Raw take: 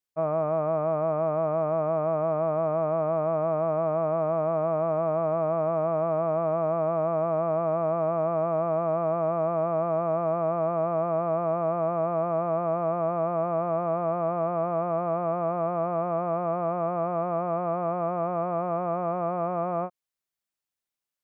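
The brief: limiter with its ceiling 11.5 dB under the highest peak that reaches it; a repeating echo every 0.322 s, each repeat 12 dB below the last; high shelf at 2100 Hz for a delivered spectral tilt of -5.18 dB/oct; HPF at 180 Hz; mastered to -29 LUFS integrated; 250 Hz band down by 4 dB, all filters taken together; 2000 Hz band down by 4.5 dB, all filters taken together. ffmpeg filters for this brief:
-af "highpass=180,equalizer=f=250:t=o:g=-4,equalizer=f=2k:t=o:g=-9,highshelf=f=2.1k:g=4,alimiter=level_in=6dB:limit=-24dB:level=0:latency=1,volume=-6dB,aecho=1:1:322|644|966:0.251|0.0628|0.0157,volume=8.5dB"

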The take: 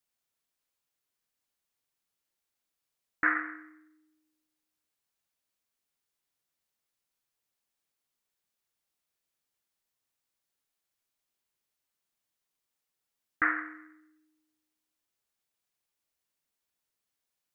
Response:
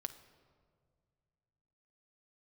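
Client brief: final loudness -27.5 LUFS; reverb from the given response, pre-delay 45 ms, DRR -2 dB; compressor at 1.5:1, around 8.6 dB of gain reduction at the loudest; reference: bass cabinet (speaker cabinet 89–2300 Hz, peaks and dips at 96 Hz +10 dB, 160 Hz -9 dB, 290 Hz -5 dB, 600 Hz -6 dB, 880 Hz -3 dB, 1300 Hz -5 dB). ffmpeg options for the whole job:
-filter_complex "[0:a]acompressor=threshold=-46dB:ratio=1.5,asplit=2[a][b];[1:a]atrim=start_sample=2205,adelay=45[c];[b][c]afir=irnorm=-1:irlink=0,volume=4.5dB[d];[a][d]amix=inputs=2:normalize=0,highpass=f=89:w=0.5412,highpass=f=89:w=1.3066,equalizer=f=96:t=q:w=4:g=10,equalizer=f=160:t=q:w=4:g=-9,equalizer=f=290:t=q:w=4:g=-5,equalizer=f=600:t=q:w=4:g=-6,equalizer=f=880:t=q:w=4:g=-3,equalizer=f=1.3k:t=q:w=4:g=-5,lowpass=f=2.3k:w=0.5412,lowpass=f=2.3k:w=1.3066,volume=10dB"

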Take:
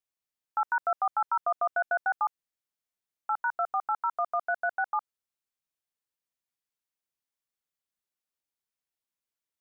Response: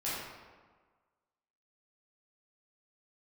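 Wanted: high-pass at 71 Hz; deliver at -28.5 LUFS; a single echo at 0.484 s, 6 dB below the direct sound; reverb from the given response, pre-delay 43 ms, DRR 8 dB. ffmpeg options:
-filter_complex "[0:a]highpass=71,aecho=1:1:484:0.501,asplit=2[a][b];[1:a]atrim=start_sample=2205,adelay=43[c];[b][c]afir=irnorm=-1:irlink=0,volume=-13.5dB[d];[a][d]amix=inputs=2:normalize=0,volume=1dB"

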